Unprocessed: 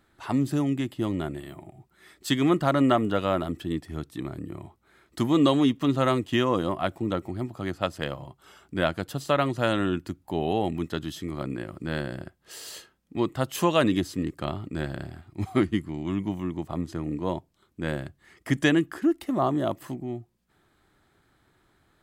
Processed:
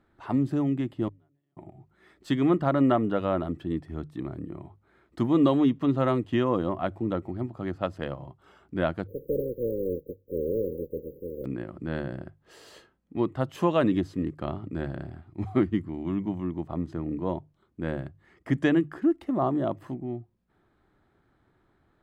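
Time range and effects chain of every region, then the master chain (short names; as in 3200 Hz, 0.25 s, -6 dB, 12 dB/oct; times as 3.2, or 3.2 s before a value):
1.08–1.57 flipped gate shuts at -32 dBFS, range -39 dB + comb 7 ms, depth 99%
9.06–11.44 spectral contrast lowered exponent 0.16 + brick-wall FIR band-stop 570–13000 Hz + bell 470 Hz +14 dB 0.58 oct
whole clip: LPF 1100 Hz 6 dB/oct; notches 50/100/150 Hz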